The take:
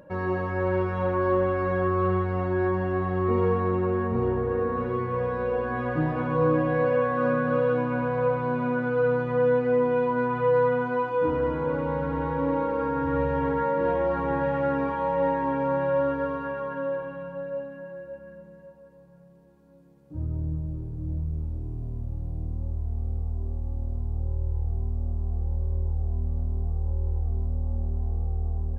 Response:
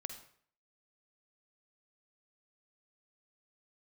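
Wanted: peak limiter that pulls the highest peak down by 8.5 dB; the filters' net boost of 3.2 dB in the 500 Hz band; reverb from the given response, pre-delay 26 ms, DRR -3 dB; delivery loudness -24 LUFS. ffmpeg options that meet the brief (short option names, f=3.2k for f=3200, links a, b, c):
-filter_complex "[0:a]equalizer=f=500:t=o:g=3.5,alimiter=limit=-18.5dB:level=0:latency=1,asplit=2[a][b];[1:a]atrim=start_sample=2205,adelay=26[c];[b][c]afir=irnorm=-1:irlink=0,volume=5.5dB[d];[a][d]amix=inputs=2:normalize=0,volume=-1.5dB"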